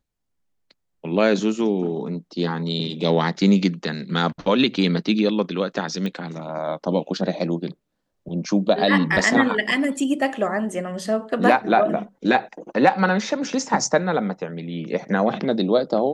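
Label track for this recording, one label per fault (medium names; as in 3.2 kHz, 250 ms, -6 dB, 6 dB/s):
6.060000	6.060000	pop -17 dBFS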